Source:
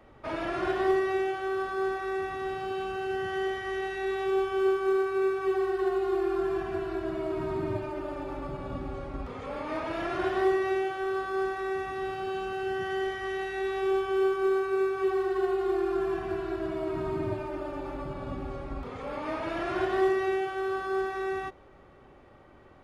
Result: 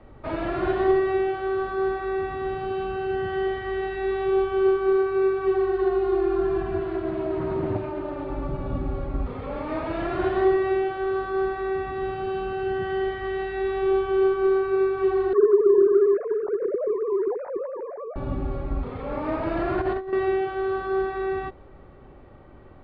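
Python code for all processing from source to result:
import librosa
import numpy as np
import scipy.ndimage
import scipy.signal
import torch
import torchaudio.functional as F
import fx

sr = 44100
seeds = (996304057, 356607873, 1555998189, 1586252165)

y = fx.chain(x, sr, fx.highpass(hz=110.0, slope=6),
    fx.doppler_dist(depth_ms=0.38), at=(6.81, 8.29))
y = fx.chain(y, sr, fx.sine_speech(),
    fx.lowpass(hz=2000.0, slope=24),
    fx.tilt_shelf(db=5.0, hz=1300.0), at=(15.33, 18.16))
y = fx.chain(y, sr, fx.over_compress(threshold_db=-29.0, ratio=-0.5),
    fx.resample_linear(factor=6), at=(19.1, 20.13))
y = scipy.signal.sosfilt(scipy.signal.butter(12, 4600.0, 'lowpass', fs=sr, output='sos'), y)
y = fx.tilt_eq(y, sr, slope=-2.0)
y = F.gain(torch.from_numpy(y), 2.5).numpy()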